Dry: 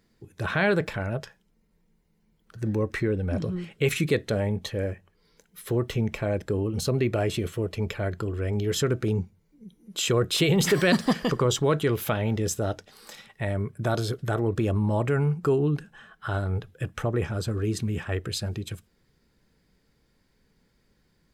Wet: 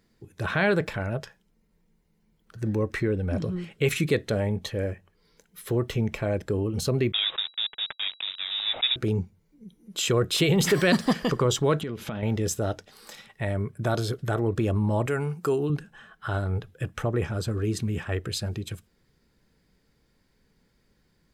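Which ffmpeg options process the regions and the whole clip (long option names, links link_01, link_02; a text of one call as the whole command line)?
ffmpeg -i in.wav -filter_complex "[0:a]asettb=1/sr,asplit=3[link_01][link_02][link_03];[link_01]atrim=end=7.124[link_04];[link_02]atrim=start=7.12:end=8.96,asetpts=PTS-STARTPTS,afade=type=in:duration=0.004:curve=qsin,afade=type=out:start_time=1.836:duration=0.004:curve=qsin,highpass=frequency=130:width=0.5412,highpass=frequency=130:width=1.3066,aeval=exprs='val(0)*gte(abs(val(0)),0.0299)':channel_layout=same,lowpass=frequency=3300:width_type=q:width=0.5098,lowpass=frequency=3300:width_type=q:width=0.6013,lowpass=frequency=3300:width_type=q:width=0.9,lowpass=frequency=3300:width_type=q:width=2.563,afreqshift=-3900[link_05];[link_03]atrim=start=8.956[link_06];[link_04][link_05]acrossfade=duration=0.004:curve1=hsin:curve2=qsin[link_07];[link_07][link_06]acrossfade=duration=0.004:curve1=qsin:curve2=hsin,asettb=1/sr,asplit=3[link_08][link_09][link_10];[link_08]atrim=end=11.814[link_11];[link_09]atrim=start=11.81:end=12.23,asetpts=PTS-STARTPTS,afade=type=in:duration=0.004:curve=qsin,afade=type=out:start_time=0.416:duration=0.004:curve=qsin,lowpass=6700,equalizer=frequency=220:width=1.9:gain=9,acompressor=threshold=-29dB:ratio=6:attack=3.2:release=140:knee=1:detection=peak[link_12];[link_10]atrim=start=12.226[link_13];[link_11][link_12]acrossfade=duration=0.004:curve1=hsin:curve2=qsin[link_14];[link_14][link_13]acrossfade=duration=0.004:curve1=qsin:curve2=hsin,asettb=1/sr,asplit=3[link_15][link_16][link_17];[link_15]atrim=end=15.064[link_18];[link_16]atrim=start=15.06:end=15.7,asetpts=PTS-STARTPTS,afade=type=in:duration=0.004:curve=qsin,afade=type=out:start_time=0.636:duration=0.004:curve=qsin,highpass=frequency=250:poles=1,aemphasis=mode=production:type=cd[link_19];[link_17]atrim=start=15.696[link_20];[link_18][link_19]acrossfade=duration=0.004:curve1=hsin:curve2=qsin[link_21];[link_21][link_20]acrossfade=duration=0.004:curve1=qsin:curve2=hsin" out.wav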